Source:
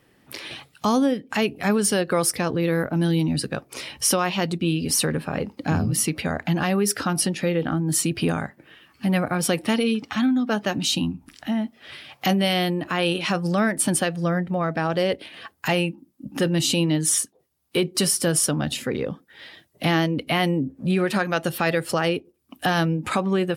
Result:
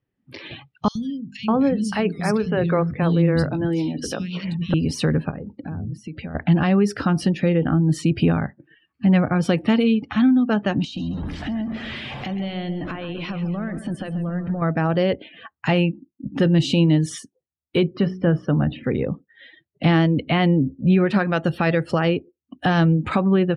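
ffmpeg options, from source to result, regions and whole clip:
ffmpeg -i in.wav -filter_complex "[0:a]asettb=1/sr,asplit=3[link_01][link_02][link_03];[link_01]atrim=end=0.884[link_04];[link_02]atrim=start=0.88:end=4.74,asetpts=PTS-STARTPTS,afade=type=in:duration=0.004:curve=qsin,afade=type=out:start_time=3.856:duration=0.004:curve=qsin,bandreject=frequency=50:width_type=h:width=6,bandreject=frequency=100:width_type=h:width=6,bandreject=frequency=150:width_type=h:width=6,bandreject=frequency=200:width_type=h:width=6,bandreject=frequency=250:width_type=h:width=6,bandreject=frequency=300:width_type=h:width=6,bandreject=frequency=350:width_type=h:width=6,bandreject=frequency=400:width_type=h:width=6,bandreject=frequency=450:width_type=h:width=6,acrossover=split=210|2800[link_05][link_06][link_07];[link_05]adelay=70[link_08];[link_06]adelay=600[link_09];[link_08][link_09][link_07]amix=inputs=3:normalize=0,atrim=end_sample=170226[link_10];[link_03]atrim=start=4.736[link_11];[link_04][link_10]acrossfade=duration=0.004:curve1=hsin:curve2=qsin[link_12];[link_12][link_11]acrossfade=duration=0.004:curve1=qsin:curve2=hsin,asettb=1/sr,asplit=3[link_13][link_14][link_15];[link_13]atrim=end=5.304[link_16];[link_14]atrim=start=5.3:end=6.35,asetpts=PTS-STARTPTS,afade=type=in:duration=0.004:curve=qsin,afade=type=out:start_time=1.046:duration=0.004:curve=qsin,lowpass=11000,acompressor=threshold=-32dB:ratio=12:attack=3.2:release=140:knee=1:detection=peak[link_17];[link_15]atrim=start=6.346[link_18];[link_16][link_17]acrossfade=duration=0.004:curve1=hsin:curve2=qsin[link_19];[link_19][link_18]acrossfade=duration=0.004:curve1=qsin:curve2=hsin,asettb=1/sr,asplit=3[link_20][link_21][link_22];[link_20]atrim=end=10.844[link_23];[link_21]atrim=start=10.84:end=14.62,asetpts=PTS-STARTPTS,afade=type=in:duration=0.004:curve=qsin,afade=type=out:start_time=3.776:duration=0.004:curve=qsin,aeval=exprs='val(0)+0.5*0.0335*sgn(val(0))':channel_layout=same,acompressor=threshold=-28dB:ratio=20:attack=3.2:release=140:knee=1:detection=peak,aecho=1:1:134|268|402|536|670|804:0.316|0.168|0.0888|0.0471|0.025|0.0132,atrim=end_sample=166698[link_24];[link_22]atrim=start=14.616[link_25];[link_23][link_24]acrossfade=duration=0.004:curve1=hsin:curve2=qsin[link_26];[link_26][link_25]acrossfade=duration=0.004:curve1=qsin:curve2=hsin,asettb=1/sr,asplit=3[link_27][link_28][link_29];[link_27]atrim=end=17.874[link_30];[link_28]atrim=start=17.87:end=18.84,asetpts=PTS-STARTPTS,afade=type=in:duration=0.004:curve=qsin,afade=type=out:start_time=0.966:duration=0.004:curve=qsin,lowpass=2100,bandreject=frequency=61.76:width_type=h:width=4,bandreject=frequency=123.52:width_type=h:width=4,bandreject=frequency=185.28:width_type=h:width=4,bandreject=frequency=247.04:width_type=h:width=4,bandreject=frequency=308.8:width_type=h:width=4,bandreject=frequency=370.56:width_type=h:width=4,bandreject=frequency=432.32:width_type=h:width=4[link_31];[link_29]atrim=start=18.836[link_32];[link_30][link_31]acrossfade=duration=0.004:curve1=hsin:curve2=qsin[link_33];[link_33][link_32]acrossfade=duration=0.004:curve1=qsin:curve2=hsin,afftdn=noise_reduction=25:noise_floor=-42,lowpass=3700,lowshelf=frequency=220:gain=10.5" out.wav

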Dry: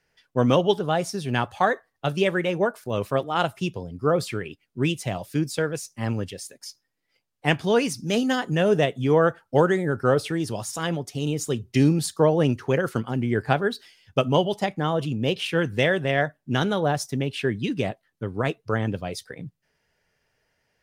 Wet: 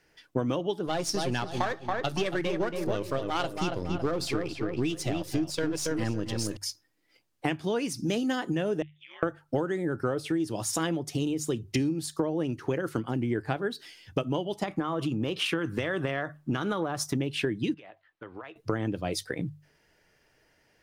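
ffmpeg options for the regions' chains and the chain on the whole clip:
ffmpeg -i in.wav -filter_complex "[0:a]asettb=1/sr,asplit=3[link_01][link_02][link_03];[link_01]atrim=end=0.874[link_04];[link_02]atrim=start=0.87:end=6.57,asetpts=PTS-STARTPTS,afade=type=in:duration=0.004:curve=qsin,afade=type=out:start_time=5.696:duration=0.004:curve=qsin,aeval=exprs='if(lt(val(0),0),0.447*val(0),val(0))':channel_layout=same,equalizer=frequency=5000:width_type=o:width=1.2:gain=8,asplit=2[link_05][link_06];[link_06]adelay=278,lowpass=frequency=2100:poles=1,volume=-6dB,asplit=2[link_07][link_08];[link_08]adelay=278,lowpass=frequency=2100:poles=1,volume=0.36,asplit=2[link_09][link_10];[link_10]adelay=278,lowpass=frequency=2100:poles=1,volume=0.36,asplit=2[link_11][link_12];[link_12]adelay=278,lowpass=frequency=2100:poles=1,volume=0.36[link_13];[link_05][link_07][link_09][link_11][link_13]amix=inputs=5:normalize=0,atrim=end_sample=251370[link_14];[link_03]atrim=start=6.566[link_15];[link_04][link_14]acrossfade=duration=0.004:curve1=hsin:curve2=qsin[link_16];[link_16][link_15]acrossfade=duration=0.004:curve1=qsin:curve2=hsin,asettb=1/sr,asplit=3[link_17][link_18][link_19];[link_17]atrim=end=8.824[link_20];[link_18]atrim=start=8.82:end=9.23,asetpts=PTS-STARTPTS,afade=type=in:duration=0.004:curve=qsin,afade=type=out:start_time=0.406:duration=0.004:curve=qsin,asuperpass=centerf=2600:order=4:qfactor=2,acompressor=threshold=-45dB:ratio=12:attack=3.2:release=140:knee=1:detection=peak,aeval=exprs='val(0)*sin(2*PI*99*n/s)':channel_layout=same[link_21];[link_19]atrim=start=9.226[link_22];[link_20][link_21]acrossfade=duration=0.004:curve1=hsin:curve2=qsin[link_23];[link_23][link_22]acrossfade=duration=0.004:curve1=qsin:curve2=hsin,asettb=1/sr,asplit=3[link_24][link_25][link_26];[link_24]atrim=end=14.634[link_27];[link_25]atrim=start=14.63:end=17.16,asetpts=PTS-STARTPTS,afade=type=in:duration=0.004:curve=qsin,afade=type=out:start_time=2.526:duration=0.004:curve=qsin,equalizer=frequency=1200:width_type=o:width=0.59:gain=10.5,acompressor=threshold=-22dB:ratio=6:attack=3.2:release=140:knee=1:detection=peak[link_28];[link_26]atrim=start=17.156[link_29];[link_27][link_28]acrossfade=duration=0.004:curve1=hsin:curve2=qsin[link_30];[link_30][link_29]acrossfade=duration=0.004:curve1=qsin:curve2=hsin,asettb=1/sr,asplit=3[link_31][link_32][link_33];[link_31]atrim=end=17.744[link_34];[link_32]atrim=start=17.74:end=18.56,asetpts=PTS-STARTPTS,afade=type=in:duration=0.004:curve=qsin,afade=type=out:start_time=0.816:duration=0.004:curve=qsin,acrossover=split=590 3600:gain=0.112 1 0.0891[link_35][link_36][link_37];[link_35][link_36][link_37]amix=inputs=3:normalize=0,acompressor=threshold=-44dB:ratio=10:attack=3.2:release=140:knee=1:detection=peak[link_38];[link_33]atrim=start=18.556[link_39];[link_34][link_38]acrossfade=duration=0.004:curve1=hsin:curve2=qsin[link_40];[link_40][link_39]acrossfade=duration=0.004:curve1=qsin:curve2=hsin,equalizer=frequency=320:width=5.8:gain=10.5,acompressor=threshold=-30dB:ratio=12,bandreject=frequency=50:width_type=h:width=6,bandreject=frequency=100:width_type=h:width=6,bandreject=frequency=150:width_type=h:width=6,volume=5dB" out.wav

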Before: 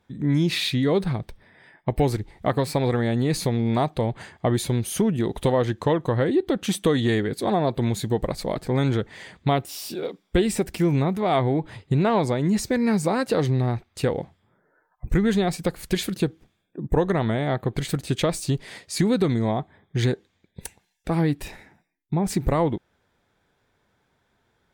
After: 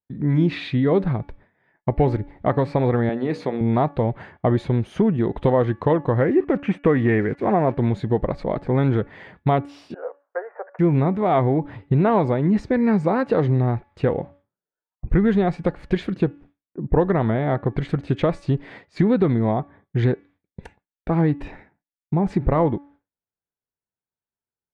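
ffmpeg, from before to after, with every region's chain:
ffmpeg -i in.wav -filter_complex "[0:a]asettb=1/sr,asplit=3[link_01][link_02][link_03];[link_01]atrim=end=3.094[link_04];[link_02]atrim=start=3.09:end=3.61,asetpts=PTS-STARTPTS,afade=type=in:duration=0.004:curve=qsin,afade=type=out:start_time=0.516:duration=0.004:curve=qsin,highpass=240,bandreject=frequency=60:width_type=h:width=6,bandreject=frequency=120:width_type=h:width=6,bandreject=frequency=180:width_type=h:width=6,bandreject=frequency=240:width_type=h:width=6,bandreject=frequency=300:width_type=h:width=6,bandreject=frequency=360:width_type=h:width=6,bandreject=frequency=420:width_type=h:width=6,bandreject=frequency=480:width_type=h:width=6,bandreject=frequency=540:width_type=h:width=6,bandreject=frequency=600:width_type=h:width=6[link_05];[link_03]atrim=start=3.606[link_06];[link_04][link_05]acrossfade=duration=0.004:curve1=hsin:curve2=qsin[link_07];[link_07][link_06]acrossfade=duration=0.004:curve1=qsin:curve2=hsin,asettb=1/sr,asplit=3[link_08][link_09][link_10];[link_08]atrim=end=6.214[link_11];[link_09]atrim=start=6.21:end=7.78,asetpts=PTS-STARTPTS,afade=type=in:duration=0.004:curve=qsin,afade=type=out:start_time=1.566:duration=0.004:curve=qsin,highshelf=frequency=3000:width_type=q:width=3:gain=-7.5,acrusher=bits=6:mix=0:aa=0.5,lowpass=9900[link_12];[link_10]atrim=start=7.776[link_13];[link_11][link_12]acrossfade=duration=0.004:curve1=hsin:curve2=qsin[link_14];[link_14][link_13]acrossfade=duration=0.004:curve1=qsin:curve2=hsin,asettb=1/sr,asplit=3[link_15][link_16][link_17];[link_15]atrim=end=9.944[link_18];[link_16]atrim=start=9.94:end=10.79,asetpts=PTS-STARTPTS,afade=type=in:duration=0.004:curve=qsin,afade=type=out:start_time=0.846:duration=0.004:curve=qsin,asuperpass=centerf=920:order=12:qfactor=0.75,acompressor=mode=upward:threshold=-50dB:ratio=2.5:attack=3.2:release=140:knee=2.83:detection=peak[link_19];[link_17]atrim=start=10.786[link_20];[link_18][link_19]acrossfade=duration=0.004:curve1=hsin:curve2=qsin[link_21];[link_21][link_20]acrossfade=duration=0.004:curve1=qsin:curve2=hsin,lowpass=1800,bandreject=frequency=284.9:width_type=h:width=4,bandreject=frequency=569.8:width_type=h:width=4,bandreject=frequency=854.7:width_type=h:width=4,bandreject=frequency=1139.6:width_type=h:width=4,bandreject=frequency=1424.5:width_type=h:width=4,bandreject=frequency=1709.4:width_type=h:width=4,bandreject=frequency=1994.3:width_type=h:width=4,bandreject=frequency=2279.2:width_type=h:width=4,bandreject=frequency=2564.1:width_type=h:width=4,bandreject=frequency=2849:width_type=h:width=4,agate=range=-33dB:threshold=-45dB:ratio=3:detection=peak,volume=3dB" out.wav

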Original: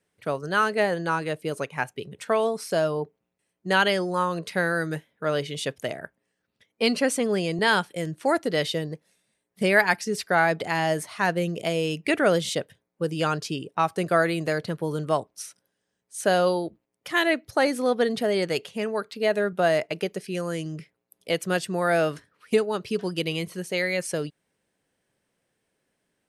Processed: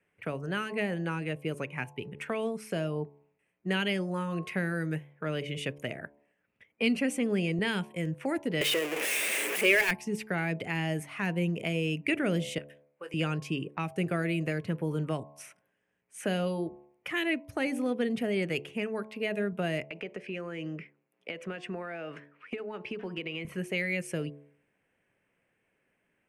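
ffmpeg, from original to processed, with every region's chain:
ffmpeg -i in.wav -filter_complex "[0:a]asettb=1/sr,asplit=3[link_01][link_02][link_03];[link_01]atrim=end=8.614[link_04];[link_02]atrim=start=8.61:end=9.91,asetpts=PTS-STARTPTS,afade=type=in:duration=0.004:curve=qsin,afade=type=out:start_time=1.296:duration=0.004:curve=qsin,aeval=exprs='val(0)+0.5*0.075*sgn(val(0))':channel_layout=same,highpass=frequency=400:width=0.5412,highpass=frequency=400:width=1.3066,acontrast=76[link_05];[link_03]atrim=start=9.906[link_06];[link_04][link_05]acrossfade=duration=0.004:curve1=hsin:curve2=qsin[link_07];[link_07][link_06]acrossfade=duration=0.004:curve1=qsin:curve2=hsin,asettb=1/sr,asplit=3[link_08][link_09][link_10];[link_08]atrim=end=12.584[link_11];[link_09]atrim=start=12.58:end=13.14,asetpts=PTS-STARTPTS,afade=type=in:duration=0.004:curve=qsin,afade=type=out:start_time=0.556:duration=0.004:curve=qsin,highpass=730,acompressor=threshold=-40dB:ratio=2:attack=3.2:release=140:knee=1:detection=peak,asplit=2[link_12][link_13];[link_13]adelay=21,volume=-9dB[link_14];[link_12][link_14]amix=inputs=2:normalize=0,atrim=end_sample=24696[link_15];[link_10]atrim=start=13.136[link_16];[link_11][link_15]acrossfade=duration=0.004:curve1=hsin:curve2=qsin[link_17];[link_17][link_16]acrossfade=duration=0.004:curve1=qsin:curve2=hsin,asettb=1/sr,asplit=3[link_18][link_19][link_20];[link_18]atrim=end=19.834[link_21];[link_19]atrim=start=19.83:end=23.45,asetpts=PTS-STARTPTS,afade=type=in:duration=0.004:curve=qsin,afade=type=out:start_time=3.616:duration=0.004:curve=qsin,highpass=210,lowpass=4900,acompressor=threshold=-31dB:ratio=6:attack=3.2:release=140:knee=1:detection=peak[link_22];[link_20]atrim=start=23.446[link_23];[link_21][link_22]acrossfade=duration=0.004:curve1=hsin:curve2=qsin[link_24];[link_24][link_23]acrossfade=duration=0.004:curve1=qsin:curve2=hsin,highshelf=frequency=3200:width_type=q:width=3:gain=-9,bandreject=frequency=72.09:width_type=h:width=4,bandreject=frequency=144.18:width_type=h:width=4,bandreject=frequency=216.27:width_type=h:width=4,bandreject=frequency=288.36:width_type=h:width=4,bandreject=frequency=360.45:width_type=h:width=4,bandreject=frequency=432.54:width_type=h:width=4,bandreject=frequency=504.63:width_type=h:width=4,bandreject=frequency=576.72:width_type=h:width=4,bandreject=frequency=648.81:width_type=h:width=4,bandreject=frequency=720.9:width_type=h:width=4,bandreject=frequency=792.99:width_type=h:width=4,bandreject=frequency=865.08:width_type=h:width=4,bandreject=frequency=937.17:width_type=h:width=4,bandreject=frequency=1009.26:width_type=h:width=4,bandreject=frequency=1081.35:width_type=h:width=4,acrossover=split=340|3000[link_25][link_26][link_27];[link_26]acompressor=threshold=-39dB:ratio=4[link_28];[link_25][link_28][link_27]amix=inputs=3:normalize=0" out.wav

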